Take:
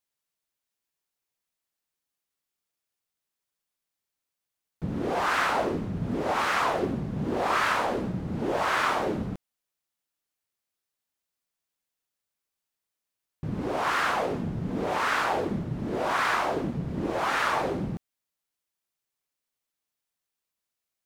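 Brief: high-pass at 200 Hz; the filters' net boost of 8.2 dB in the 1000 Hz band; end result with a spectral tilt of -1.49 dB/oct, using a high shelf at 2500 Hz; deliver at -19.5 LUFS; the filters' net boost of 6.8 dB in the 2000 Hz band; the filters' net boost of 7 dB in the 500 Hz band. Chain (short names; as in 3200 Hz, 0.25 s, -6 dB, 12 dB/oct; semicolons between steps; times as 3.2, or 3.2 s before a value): HPF 200 Hz; bell 500 Hz +6.5 dB; bell 1000 Hz +6.5 dB; bell 2000 Hz +3.5 dB; high shelf 2500 Hz +5.5 dB; gain +1 dB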